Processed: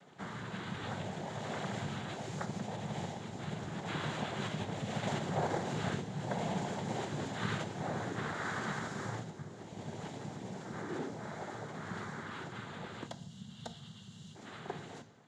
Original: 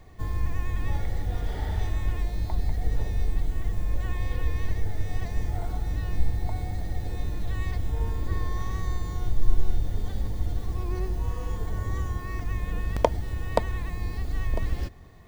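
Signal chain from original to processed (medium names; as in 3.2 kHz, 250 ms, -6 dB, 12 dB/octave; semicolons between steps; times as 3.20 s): Doppler pass-by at 5.52 s, 13 m/s, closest 6.1 m; compression 6:1, threshold -39 dBFS, peak gain reduction 20 dB; noise-vocoded speech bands 6; time-frequency box 13.07–14.35 s, 240–2700 Hz -17 dB; reverberation RT60 0.70 s, pre-delay 3 ms, DRR 11 dB; trim +15.5 dB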